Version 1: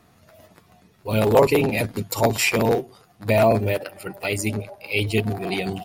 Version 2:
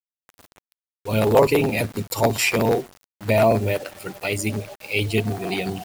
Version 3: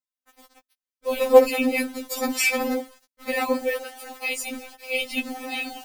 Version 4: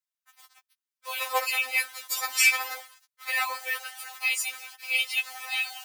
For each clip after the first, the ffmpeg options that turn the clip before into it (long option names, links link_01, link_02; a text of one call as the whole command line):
ffmpeg -i in.wav -af "acrusher=bits=6:mix=0:aa=0.000001" out.wav
ffmpeg -i in.wav -af "afftfilt=real='re*3.46*eq(mod(b,12),0)':imag='im*3.46*eq(mod(b,12),0)':win_size=2048:overlap=0.75,volume=1.5dB" out.wav
ffmpeg -i in.wav -filter_complex "[0:a]asplit=2[link_01][link_02];[link_02]acrusher=bits=6:mix=0:aa=0.000001,volume=-12dB[link_03];[link_01][link_03]amix=inputs=2:normalize=0,highpass=frequency=1000:width=0.5412,highpass=frequency=1000:width=1.3066" out.wav